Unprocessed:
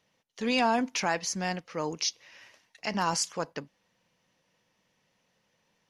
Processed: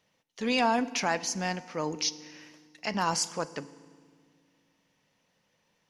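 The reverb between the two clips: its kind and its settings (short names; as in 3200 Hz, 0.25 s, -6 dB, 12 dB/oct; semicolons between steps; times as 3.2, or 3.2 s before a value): FDN reverb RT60 1.8 s, low-frequency decay 1.5×, high-frequency decay 0.85×, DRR 16 dB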